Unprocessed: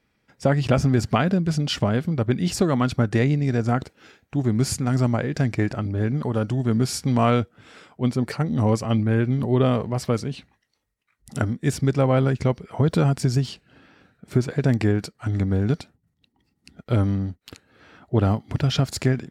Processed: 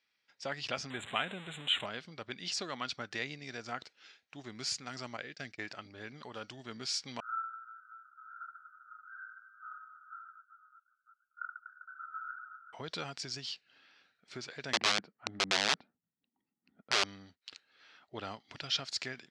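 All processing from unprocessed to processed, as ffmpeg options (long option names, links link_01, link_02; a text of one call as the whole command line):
ffmpeg -i in.wav -filter_complex "[0:a]asettb=1/sr,asplit=3[link_01][link_02][link_03];[link_01]atrim=end=0.904[link_04];[link_02]atrim=start=0.9:end=1.86,asetpts=PTS-STARTPTS,afade=type=in:duration=0.004:curve=qsin,afade=type=out:start_time=0.956:duration=0.004:curve=qsin,aeval=exprs='val(0)+0.5*0.0501*sgn(val(0))':channel_layout=same,asuperstop=centerf=5300:order=12:qfactor=1.5[link_05];[link_03]atrim=start=1.856[link_06];[link_04][link_05]acrossfade=duration=0.004:curve1=hsin:curve2=qsin[link_07];[link_07][link_06]acrossfade=duration=0.004:curve1=qsin:curve2=hsin,asettb=1/sr,asplit=3[link_08][link_09][link_10];[link_08]atrim=end=5.174[link_11];[link_09]atrim=start=5.17:end=5.59,asetpts=PTS-STARTPTS,afade=type=in:duration=0.004:curve=qsin,afade=type=out:start_time=0.416:duration=0.004:curve=qsin,equalizer=frequency=940:width=5.6:gain=-13,agate=range=-33dB:threshold=-25dB:ratio=3:release=100:detection=peak[link_12];[link_10]atrim=start=5.586[link_13];[link_11][link_12]acrossfade=duration=0.004:curve1=hsin:curve2=qsin[link_14];[link_14][link_13]acrossfade=duration=0.004:curve1=qsin:curve2=hsin,asettb=1/sr,asplit=3[link_15][link_16][link_17];[link_15]atrim=end=7.204[link_18];[link_16]atrim=start=7.2:end=12.73,asetpts=PTS-STARTPTS,afade=type=in:duration=0.004:curve=qsin,afade=type=out:start_time=5.526:duration=0.004:curve=qsin,asuperpass=centerf=1400:order=12:qfactor=4.8,aecho=1:1:30|75|142.5|243.8|395.6|623.4|965.2:0.794|0.631|0.501|0.398|0.316|0.251|0.2,atrim=end_sample=243873[link_19];[link_17]atrim=start=12.726[link_20];[link_18][link_19]acrossfade=duration=0.004:curve1=hsin:curve2=qsin[link_21];[link_21][link_20]acrossfade=duration=0.004:curve1=qsin:curve2=hsin,asettb=1/sr,asplit=3[link_22][link_23][link_24];[link_22]atrim=end=14.734[link_25];[link_23]atrim=start=14.73:end=17.04,asetpts=PTS-STARTPTS,afade=type=in:duration=0.004:curve=qsin,afade=type=out:start_time=2.306:duration=0.004:curve=qsin,lowpass=1100,equalizer=frequency=220:width_type=o:width=1:gain=10.5,aeval=exprs='(mod(3.55*val(0)+1,2)-1)/3.55':channel_layout=same[link_26];[link_24]atrim=start=17.036[link_27];[link_25][link_26]acrossfade=duration=0.004:curve1=hsin:curve2=qsin[link_28];[link_28][link_27]acrossfade=duration=0.004:curve1=qsin:curve2=hsin,lowpass=frequency=5000:width=0.5412,lowpass=frequency=5000:width=1.3066,aderivative,volume=3.5dB" out.wav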